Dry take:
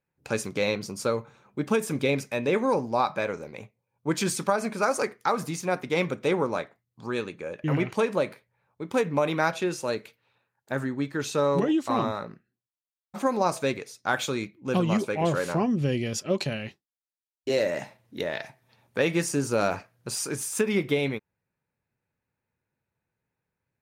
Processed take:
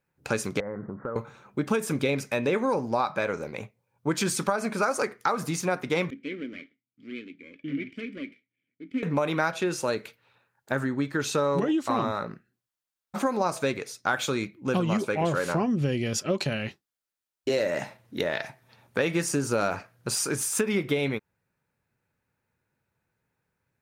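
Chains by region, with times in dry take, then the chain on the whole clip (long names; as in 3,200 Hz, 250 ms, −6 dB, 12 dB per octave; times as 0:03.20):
0:00.60–0:01.16: Butterworth low-pass 1,900 Hz 96 dB per octave + downward compressor, threshold −35 dBFS
0:06.10–0:09.03: lower of the sound and its delayed copy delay 0.38 ms + formant filter i
whole clip: parametric band 1,400 Hz +3.5 dB 0.47 octaves; downward compressor 2.5 to 1, threshold −29 dBFS; level +4.5 dB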